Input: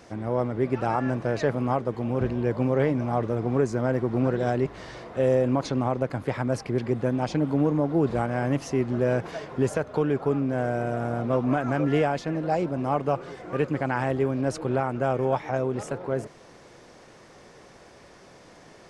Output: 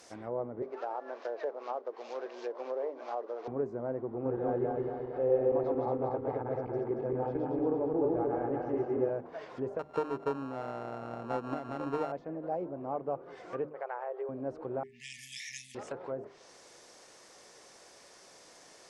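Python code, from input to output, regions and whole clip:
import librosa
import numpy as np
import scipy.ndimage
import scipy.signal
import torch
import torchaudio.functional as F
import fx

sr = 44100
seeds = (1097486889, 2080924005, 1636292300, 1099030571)

y = fx.chain(x, sr, fx.cvsd(bps=32000),
    fx.highpass(hz=400.0, slope=24), at=(0.62, 3.48))
y = fx.chain(y, sr, fx.reverse_delay_fb(ms=115, feedback_pct=74, wet_db=-1.0),
    fx.lowpass(hz=3900.0, slope=12),
    fx.comb(ms=2.4, depth=0.37), at=(4.14, 9.1))
y = fx.chain(y, sr, fx.sample_sort(block=32),
    fx.transient(attack_db=6, sustain_db=-1), at=(9.79, 12.12))
y = fx.chain(y, sr, fx.brickwall_highpass(low_hz=380.0),
    fx.spacing_loss(db_at_10k=21), at=(13.69, 14.29))
y = fx.chain(y, sr, fx.brickwall_bandstop(low_hz=240.0, high_hz=1700.0),
    fx.tilt_eq(slope=4.5), at=(14.83, 15.75))
y = fx.hum_notches(y, sr, base_hz=50, count=8)
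y = fx.env_lowpass_down(y, sr, base_hz=760.0, full_db=-24.5)
y = fx.bass_treble(y, sr, bass_db=-12, treble_db=12)
y = y * 10.0 ** (-6.5 / 20.0)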